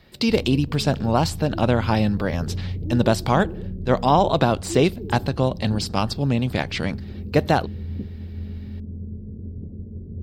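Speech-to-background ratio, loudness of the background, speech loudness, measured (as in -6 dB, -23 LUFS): 11.5 dB, -33.5 LUFS, -22.0 LUFS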